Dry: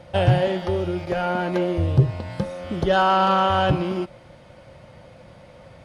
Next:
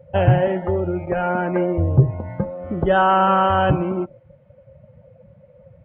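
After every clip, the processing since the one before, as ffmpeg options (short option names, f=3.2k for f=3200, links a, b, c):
-af "lowpass=f=2.7k:w=0.5412,lowpass=f=2.7k:w=1.3066,afftdn=nr=19:nf=-36,volume=2.5dB"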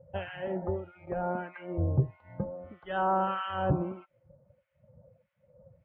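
-filter_complex "[0:a]acrossover=split=1300[a][b];[a]aeval=exprs='val(0)*(1-1/2+1/2*cos(2*PI*1.6*n/s))':c=same[c];[b]aeval=exprs='val(0)*(1-1/2-1/2*cos(2*PI*1.6*n/s))':c=same[d];[c][d]amix=inputs=2:normalize=0,volume=-8.5dB"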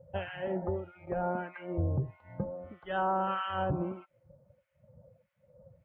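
-af "alimiter=limit=-22dB:level=0:latency=1:release=93"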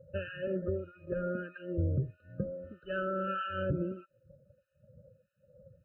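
-af "afftfilt=real='re*eq(mod(floor(b*sr/1024/610),2),0)':imag='im*eq(mod(floor(b*sr/1024/610),2),0)':win_size=1024:overlap=0.75"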